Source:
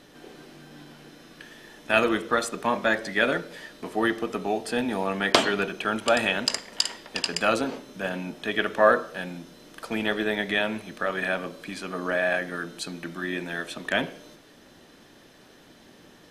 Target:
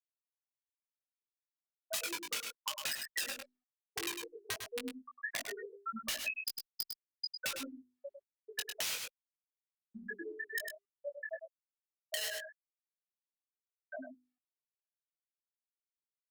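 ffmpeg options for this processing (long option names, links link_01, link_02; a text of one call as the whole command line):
ffmpeg -i in.wav -af "volume=15dB,asoftclip=hard,volume=-15dB,afftfilt=real='re*gte(hypot(re,im),0.398)':imag='im*gte(hypot(re,im),0.398)':win_size=1024:overlap=0.75,bandreject=frequency=50:width_type=h:width=6,bandreject=frequency=100:width_type=h:width=6,bandreject=frequency=150:width_type=h:width=6,bandreject=frequency=200:width_type=h:width=6,bandreject=frequency=250:width_type=h:width=6,bandreject=frequency=300:width_type=h:width=6,bandreject=frequency=350:width_type=h:width=6,bandreject=frequency=400:width_type=h:width=6,aeval=exprs='(mod(15.8*val(0)+1,2)-1)/15.8':channel_layout=same,alimiter=level_in=5dB:limit=-24dB:level=0:latency=1:release=251,volume=-5dB,tiltshelf=frequency=1500:gain=-8,aecho=1:1:102:0.398,adynamicequalizer=threshold=0.00282:dfrequency=2600:dqfactor=4.3:tfrequency=2600:tqfactor=4.3:attack=5:release=100:ratio=0.375:range=2:mode=boostabove:tftype=bell,flanger=delay=17.5:depth=3.5:speed=0.16,acompressor=threshold=-36dB:ratio=6,volume=2.5dB" -ar 48000 -c:a libopus -b:a 64k out.opus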